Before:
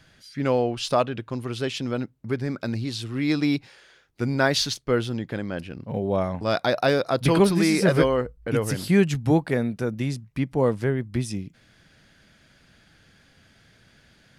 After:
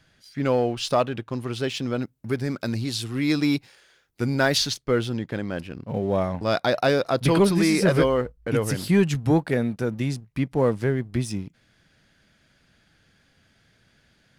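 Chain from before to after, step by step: 2.01–4.57 high shelf 6200 Hz -> 10000 Hz +11.5 dB; sample leveller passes 1; gain -3 dB

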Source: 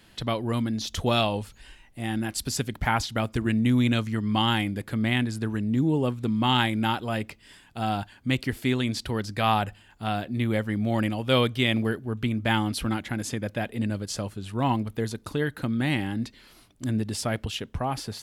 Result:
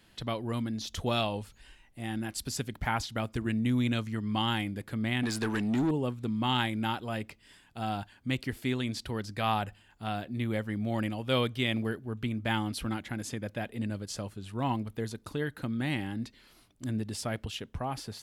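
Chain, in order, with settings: 5.23–5.91 overdrive pedal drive 22 dB, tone 6600 Hz, clips at -14.5 dBFS; gain -6 dB

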